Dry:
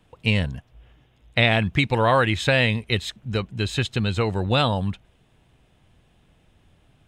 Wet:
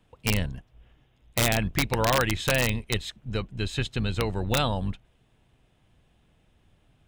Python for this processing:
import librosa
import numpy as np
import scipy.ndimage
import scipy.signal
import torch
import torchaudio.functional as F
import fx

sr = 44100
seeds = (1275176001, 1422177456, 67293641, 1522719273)

y = fx.octave_divider(x, sr, octaves=2, level_db=-5.0)
y = (np.mod(10.0 ** (9.0 / 20.0) * y + 1.0, 2.0) - 1.0) / 10.0 ** (9.0 / 20.0)
y = F.gain(torch.from_numpy(y), -5.0).numpy()